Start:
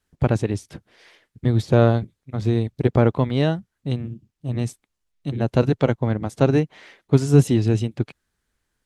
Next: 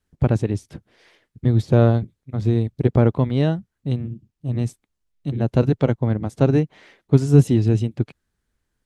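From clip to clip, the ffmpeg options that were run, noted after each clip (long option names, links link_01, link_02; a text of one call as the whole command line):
ffmpeg -i in.wav -af "lowshelf=frequency=470:gain=6.5,volume=-4dB" out.wav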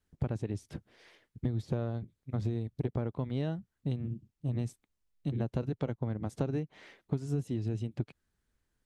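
ffmpeg -i in.wav -af "acompressor=threshold=-24dB:ratio=16,volume=-4.5dB" out.wav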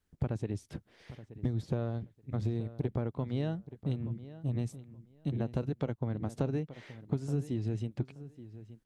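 ffmpeg -i in.wav -filter_complex "[0:a]asplit=2[link_01][link_02];[link_02]adelay=876,lowpass=frequency=3800:poles=1,volume=-15dB,asplit=2[link_03][link_04];[link_04]adelay=876,lowpass=frequency=3800:poles=1,volume=0.19[link_05];[link_01][link_03][link_05]amix=inputs=3:normalize=0" out.wav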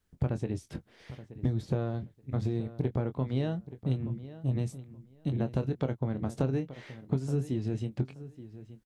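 ffmpeg -i in.wav -filter_complex "[0:a]asplit=2[link_01][link_02];[link_02]adelay=23,volume=-10dB[link_03];[link_01][link_03]amix=inputs=2:normalize=0,volume=2.5dB" out.wav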